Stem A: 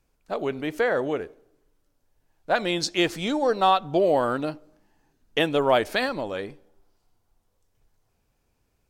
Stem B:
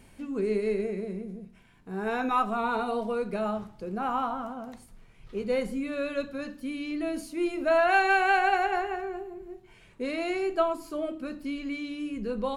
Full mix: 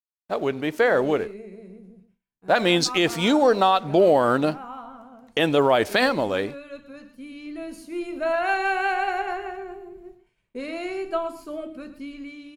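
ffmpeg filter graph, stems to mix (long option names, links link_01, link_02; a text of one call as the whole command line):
ffmpeg -i stem1.wav -i stem2.wav -filter_complex "[0:a]highpass=63,aeval=exprs='sgn(val(0))*max(abs(val(0))-0.00251,0)':channel_layout=same,volume=3dB[link_01];[1:a]agate=range=-33dB:threshold=-43dB:ratio=3:detection=peak,adelay=550,volume=-12.5dB,asplit=2[link_02][link_03];[link_03]volume=-13dB,aecho=0:1:119:1[link_04];[link_01][link_02][link_04]amix=inputs=3:normalize=0,dynaudnorm=framelen=390:gausssize=7:maxgain=11.5dB,alimiter=limit=-8.5dB:level=0:latency=1:release=55" out.wav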